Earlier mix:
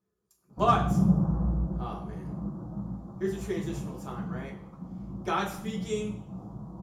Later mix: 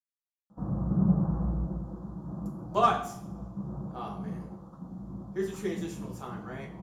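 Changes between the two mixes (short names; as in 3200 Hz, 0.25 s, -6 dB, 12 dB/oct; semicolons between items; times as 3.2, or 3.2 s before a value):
speech: entry +2.15 s; master: add low shelf 160 Hz -3.5 dB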